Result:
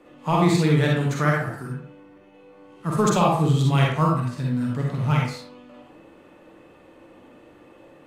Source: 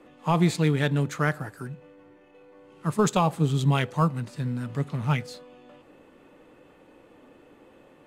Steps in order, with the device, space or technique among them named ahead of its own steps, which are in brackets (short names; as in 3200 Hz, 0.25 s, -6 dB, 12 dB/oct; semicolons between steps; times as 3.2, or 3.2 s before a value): bathroom (reverb RT60 0.50 s, pre-delay 41 ms, DRR -2 dB)